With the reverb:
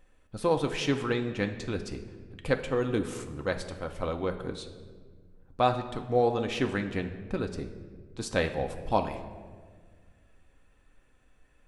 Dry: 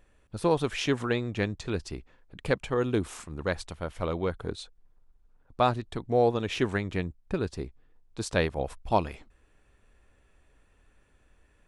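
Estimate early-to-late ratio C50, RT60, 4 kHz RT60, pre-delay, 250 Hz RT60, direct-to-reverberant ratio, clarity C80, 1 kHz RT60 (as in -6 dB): 10.0 dB, 1.6 s, 1.0 s, 4 ms, 2.3 s, 4.5 dB, 12.0 dB, 1.4 s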